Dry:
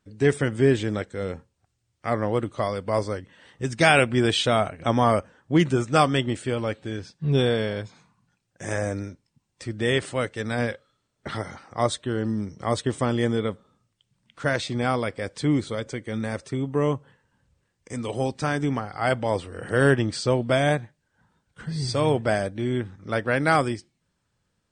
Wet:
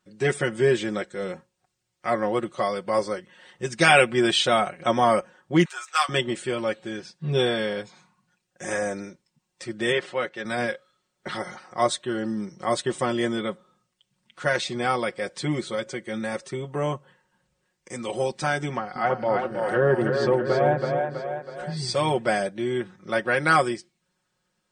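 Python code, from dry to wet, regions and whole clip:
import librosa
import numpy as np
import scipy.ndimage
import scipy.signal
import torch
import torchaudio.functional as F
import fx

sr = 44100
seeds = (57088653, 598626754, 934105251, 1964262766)

y = fx.chain(x, sr, fx.halfwave_gain(db=-3.0),
    fx.highpass(hz=990.0, slope=24),
    fx.doubler(ms=13.0, db=-12.0), at=(5.65, 6.09))
y = fx.chain(y, sr, fx.highpass(hz=250.0, slope=6),
    fx.air_absorb(metres=140.0), at=(9.92, 10.45))
y = fx.chain(y, sr, fx.env_lowpass_down(base_hz=1100.0, full_db=-19.0),
    fx.echo_split(split_hz=350.0, low_ms=212, high_ms=324, feedback_pct=52, wet_db=-4.0), at=(18.74, 21.77))
y = fx.low_shelf(y, sr, hz=170.0, db=-12.0)
y = y + 0.79 * np.pad(y, (int(5.5 * sr / 1000.0), 0))[:len(y)]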